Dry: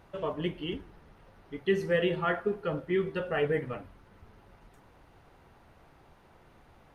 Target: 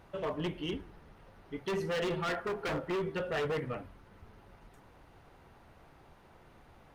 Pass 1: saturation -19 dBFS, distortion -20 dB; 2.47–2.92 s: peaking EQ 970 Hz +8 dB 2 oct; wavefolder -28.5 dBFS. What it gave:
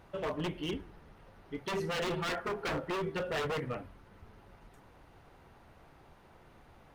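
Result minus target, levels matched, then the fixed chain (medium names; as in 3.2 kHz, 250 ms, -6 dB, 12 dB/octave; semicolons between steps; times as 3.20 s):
saturation: distortion -8 dB
saturation -25.5 dBFS, distortion -12 dB; 2.47–2.92 s: peaking EQ 970 Hz +8 dB 2 oct; wavefolder -28.5 dBFS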